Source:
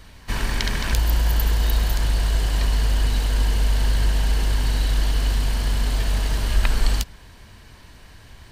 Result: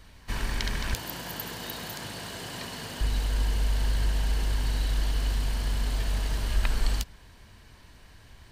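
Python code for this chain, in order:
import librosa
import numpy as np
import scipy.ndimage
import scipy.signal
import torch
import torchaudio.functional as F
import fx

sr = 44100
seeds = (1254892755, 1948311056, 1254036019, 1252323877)

y = fx.highpass(x, sr, hz=120.0, slope=24, at=(0.94, 3.01))
y = y * 10.0 ** (-6.5 / 20.0)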